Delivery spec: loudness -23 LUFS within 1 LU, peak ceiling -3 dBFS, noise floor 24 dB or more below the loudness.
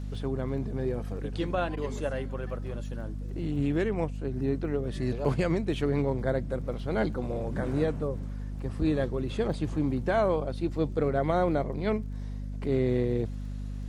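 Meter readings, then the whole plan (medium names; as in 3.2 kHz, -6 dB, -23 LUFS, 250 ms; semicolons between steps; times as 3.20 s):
tick rate 22 per s; hum 50 Hz; highest harmonic 250 Hz; hum level -33 dBFS; loudness -30.5 LUFS; peak level -12.5 dBFS; loudness target -23.0 LUFS
-> de-click; de-hum 50 Hz, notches 5; trim +7.5 dB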